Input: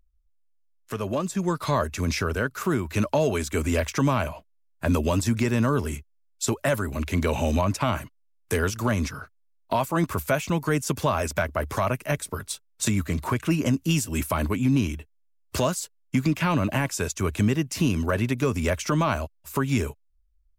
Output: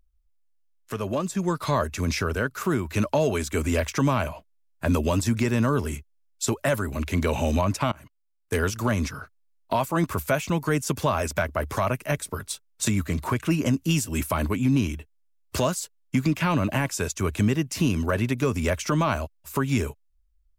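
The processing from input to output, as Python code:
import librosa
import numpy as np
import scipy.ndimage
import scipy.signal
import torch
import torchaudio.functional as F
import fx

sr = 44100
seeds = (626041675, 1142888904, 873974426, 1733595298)

y = fx.level_steps(x, sr, step_db=24, at=(7.87, 8.54))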